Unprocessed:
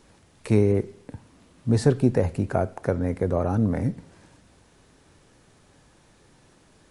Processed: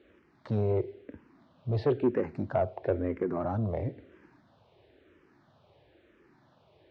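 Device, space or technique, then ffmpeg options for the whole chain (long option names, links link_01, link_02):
barber-pole phaser into a guitar amplifier: -filter_complex "[0:a]asplit=2[link_01][link_02];[link_02]afreqshift=-1[link_03];[link_01][link_03]amix=inputs=2:normalize=1,asoftclip=type=tanh:threshold=-18.5dB,highpass=77,equalizer=frequency=180:width_type=q:width=4:gain=-5,equalizer=frequency=360:width_type=q:width=4:gain=7,equalizer=frequency=620:width_type=q:width=4:gain=6,lowpass=frequency=3700:width=0.5412,lowpass=frequency=3700:width=1.3066,volume=-3dB"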